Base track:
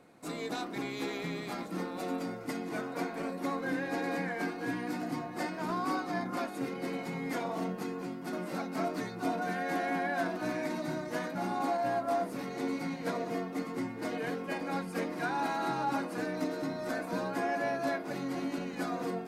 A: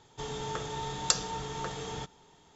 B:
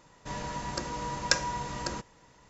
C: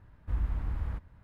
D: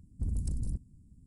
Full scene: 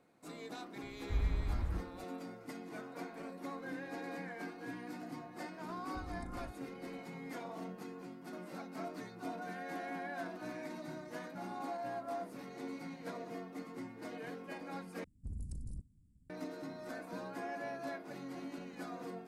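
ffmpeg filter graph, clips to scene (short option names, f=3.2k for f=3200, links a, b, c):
-filter_complex "[4:a]asplit=2[a][b];[0:a]volume=-10dB,asplit=2[c][d];[c]atrim=end=15.044[e];[b]atrim=end=1.26,asetpts=PTS-STARTPTS,volume=-10.5dB[f];[d]atrim=start=16.296[g];[3:a]atrim=end=1.23,asetpts=PTS-STARTPTS,volume=-3dB,afade=t=in:d=0.004:c=hsin,afade=t=out:st=1.226:d=0.004:c=hsin,adelay=820[h];[a]atrim=end=1.26,asetpts=PTS-STARTPTS,volume=-15.5dB,afade=t=in:d=0.004:c=hsin,afade=t=out:st=1.256:d=0.004:c=hsin,adelay=5750[i];[e][f]acrossfade=d=0.004:c1=hsin:c2=hsin[j];[j][g]acrossfade=d=0.004:c1=hsin:c2=hsin[k];[k][h][i]amix=inputs=3:normalize=0"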